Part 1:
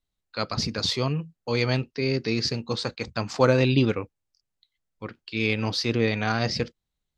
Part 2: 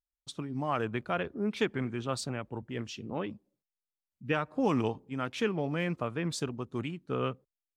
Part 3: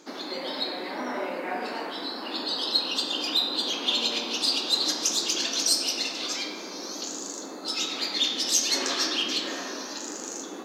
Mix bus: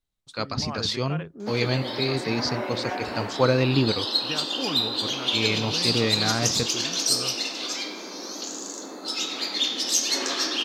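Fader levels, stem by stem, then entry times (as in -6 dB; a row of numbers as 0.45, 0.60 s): -1.0, -4.5, +0.5 dB; 0.00, 0.00, 1.40 s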